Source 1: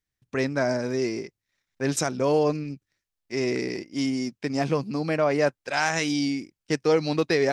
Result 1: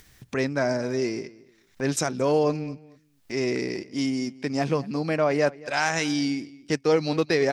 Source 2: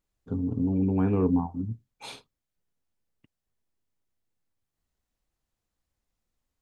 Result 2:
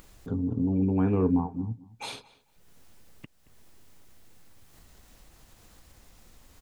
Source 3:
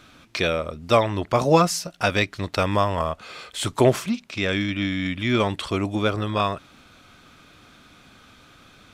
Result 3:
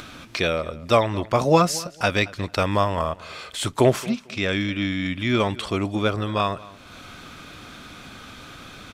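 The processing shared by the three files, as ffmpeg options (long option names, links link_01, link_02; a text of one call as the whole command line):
ffmpeg -i in.wav -filter_complex "[0:a]acompressor=mode=upward:threshold=-31dB:ratio=2.5,asplit=2[link_01][link_02];[link_02]adelay=224,lowpass=frequency=3900:poles=1,volume=-20dB,asplit=2[link_03][link_04];[link_04]adelay=224,lowpass=frequency=3900:poles=1,volume=0.21[link_05];[link_03][link_05]amix=inputs=2:normalize=0[link_06];[link_01][link_06]amix=inputs=2:normalize=0" out.wav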